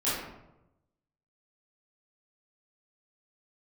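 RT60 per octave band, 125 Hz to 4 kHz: 1.3 s, 1.0 s, 1.0 s, 0.85 s, 0.65 s, 0.50 s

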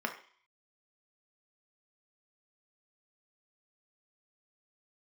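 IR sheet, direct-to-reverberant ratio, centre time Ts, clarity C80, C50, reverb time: 3.0 dB, 13 ms, 14.0 dB, 10.0 dB, 0.50 s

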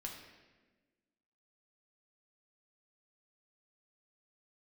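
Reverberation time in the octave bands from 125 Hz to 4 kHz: 1.5 s, 1.8 s, 1.5 s, 1.1 s, 1.2 s, 1.0 s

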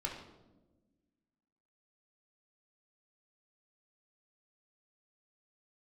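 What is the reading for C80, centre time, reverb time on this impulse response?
8.0 dB, 35 ms, 1.2 s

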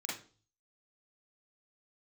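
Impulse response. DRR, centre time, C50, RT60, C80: -6.0 dB, 44 ms, 3.5 dB, 0.40 s, 11.0 dB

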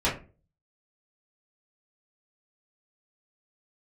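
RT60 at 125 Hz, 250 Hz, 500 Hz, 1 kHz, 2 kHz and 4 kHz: 0.55 s, 0.45 s, 0.40 s, 0.30 s, 0.30 s, 0.20 s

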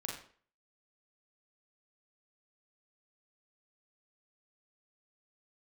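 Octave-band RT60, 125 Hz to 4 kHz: 0.40 s, 0.45 s, 0.50 s, 0.45 s, 0.45 s, 0.40 s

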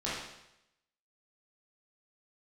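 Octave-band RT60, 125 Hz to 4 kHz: 0.85 s, 0.80 s, 0.85 s, 0.85 s, 0.85 s, 0.85 s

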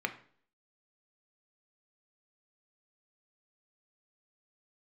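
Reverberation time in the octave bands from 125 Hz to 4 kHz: 0.55 s, 0.60 s, 0.55 s, 0.50 s, 0.45 s, 0.45 s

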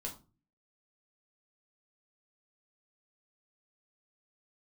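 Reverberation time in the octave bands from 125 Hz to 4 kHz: 0.60 s, 0.55 s, 0.35 s, 0.30 s, 0.25 s, 0.25 s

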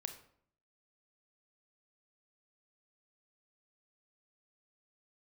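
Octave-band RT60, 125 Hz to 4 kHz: 0.80 s, 0.75 s, 0.65 s, 0.60 s, 0.50 s, 0.40 s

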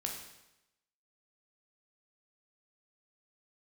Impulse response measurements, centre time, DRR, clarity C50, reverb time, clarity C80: 37 ms, 0.5 dB, 4.5 dB, 0.90 s, 7.0 dB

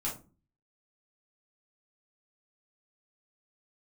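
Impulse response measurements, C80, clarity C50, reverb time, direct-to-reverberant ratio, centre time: 16.0 dB, 8.5 dB, 0.35 s, -5.5 dB, 24 ms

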